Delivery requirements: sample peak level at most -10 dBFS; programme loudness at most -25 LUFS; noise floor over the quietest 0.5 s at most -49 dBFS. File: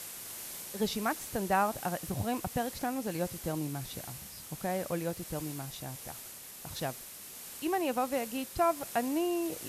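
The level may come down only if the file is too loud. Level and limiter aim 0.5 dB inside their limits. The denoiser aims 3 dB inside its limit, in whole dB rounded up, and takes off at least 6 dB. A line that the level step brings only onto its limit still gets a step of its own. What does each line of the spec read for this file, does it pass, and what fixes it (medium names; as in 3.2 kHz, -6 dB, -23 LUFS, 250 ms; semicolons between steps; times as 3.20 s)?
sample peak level -16.5 dBFS: pass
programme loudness -34.5 LUFS: pass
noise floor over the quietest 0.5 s -47 dBFS: fail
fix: noise reduction 6 dB, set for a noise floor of -47 dBFS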